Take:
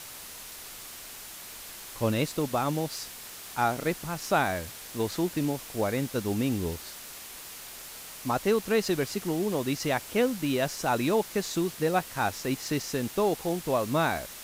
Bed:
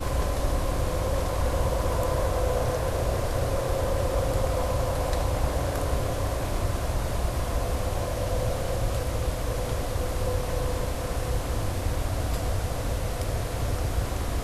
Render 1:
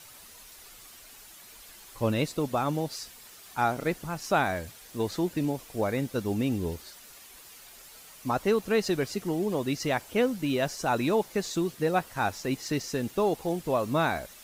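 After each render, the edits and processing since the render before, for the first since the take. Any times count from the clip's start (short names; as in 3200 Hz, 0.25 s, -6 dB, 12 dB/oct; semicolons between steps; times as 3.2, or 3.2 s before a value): denoiser 9 dB, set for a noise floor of -44 dBFS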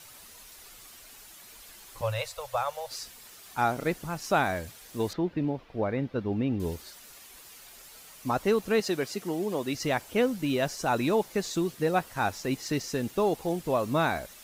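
2.01–2.91 Chebyshev band-stop 110–520 Hz, order 4; 5.13–6.6 air absorption 320 m; 8.8–9.75 HPF 230 Hz 6 dB/oct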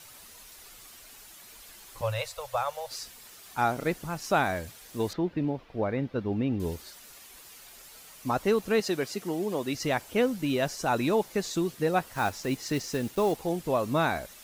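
12.11–13.42 block floating point 5-bit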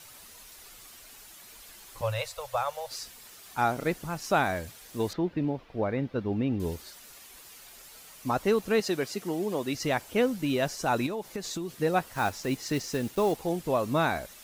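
11.06–11.79 compressor, threshold -30 dBFS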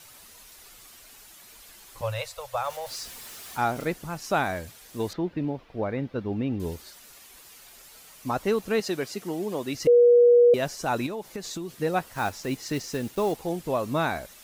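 2.64–3.85 zero-crossing step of -41 dBFS; 9.87–10.54 bleep 481 Hz -12.5 dBFS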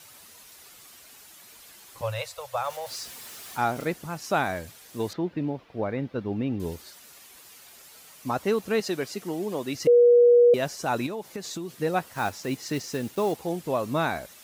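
HPF 76 Hz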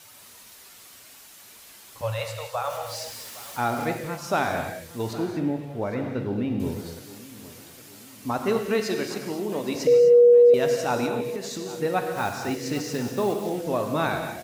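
feedback echo 0.812 s, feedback 48%, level -18 dB; non-linear reverb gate 0.28 s flat, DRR 3.5 dB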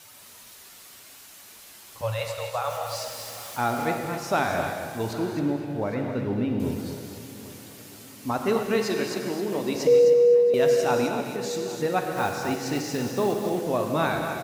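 echo 0.263 s -9.5 dB; digital reverb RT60 4.2 s, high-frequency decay 0.75×, pre-delay 85 ms, DRR 12.5 dB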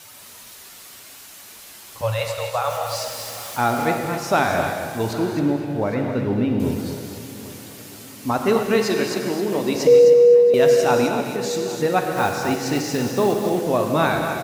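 gain +5.5 dB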